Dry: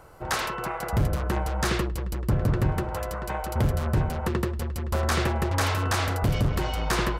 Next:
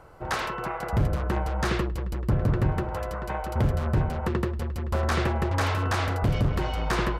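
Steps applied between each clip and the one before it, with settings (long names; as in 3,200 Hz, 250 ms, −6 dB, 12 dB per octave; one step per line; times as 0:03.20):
high-shelf EQ 5,400 Hz −11 dB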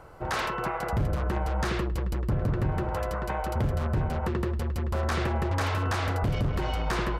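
brickwall limiter −21.5 dBFS, peak gain reduction 5.5 dB
level +1.5 dB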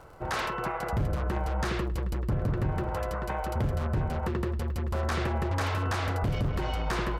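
surface crackle 38 per second −46 dBFS
level −1.5 dB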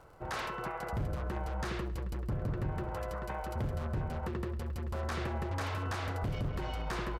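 repeating echo 68 ms, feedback 56%, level −20 dB
level −6.5 dB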